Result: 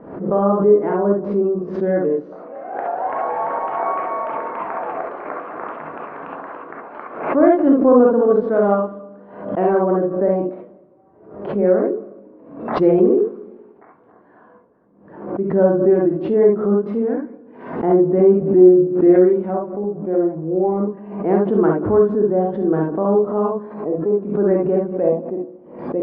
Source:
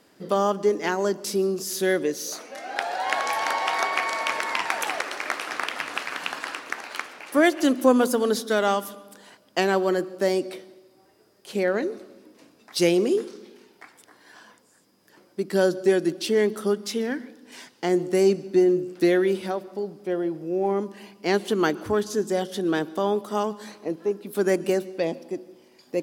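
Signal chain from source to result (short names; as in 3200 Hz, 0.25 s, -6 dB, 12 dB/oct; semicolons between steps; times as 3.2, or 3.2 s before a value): Bessel low-pass 790 Hz, order 4; non-linear reverb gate 90 ms rising, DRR -2 dB; backwards sustainer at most 80 dB/s; gain +4.5 dB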